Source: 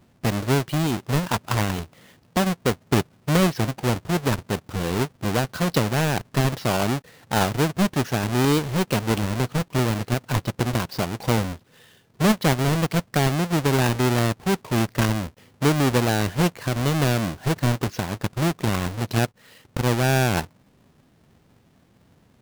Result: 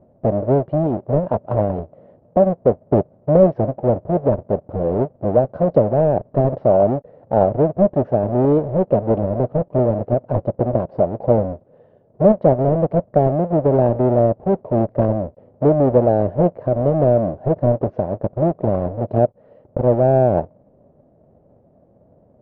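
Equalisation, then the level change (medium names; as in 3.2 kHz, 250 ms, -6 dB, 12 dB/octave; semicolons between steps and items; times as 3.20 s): resonant low-pass 600 Hz, resonance Q 5.5; distance through air 51 m; +1.5 dB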